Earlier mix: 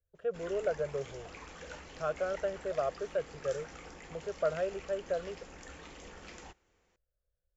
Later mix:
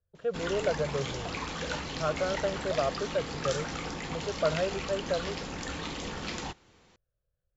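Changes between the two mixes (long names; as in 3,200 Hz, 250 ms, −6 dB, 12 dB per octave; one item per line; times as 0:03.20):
background +8.0 dB
master: add octave-band graphic EQ 125/250/1,000/4,000 Hz +10/+6/+5/+10 dB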